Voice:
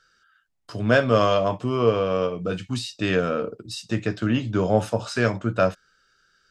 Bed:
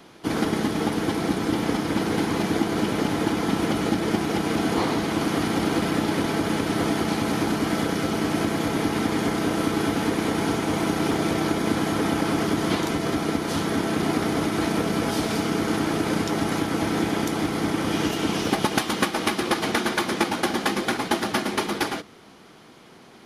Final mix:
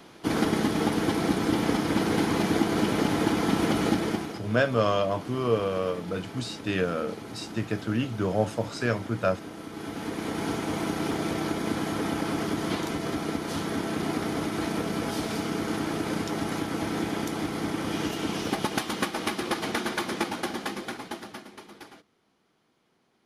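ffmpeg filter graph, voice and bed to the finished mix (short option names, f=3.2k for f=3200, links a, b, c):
-filter_complex "[0:a]adelay=3650,volume=-5dB[a];[1:a]volume=10dB,afade=t=out:st=3.92:d=0.47:silence=0.16788,afade=t=in:st=9.68:d=0.83:silence=0.281838,afade=t=out:st=20.16:d=1.35:silence=0.16788[b];[a][b]amix=inputs=2:normalize=0"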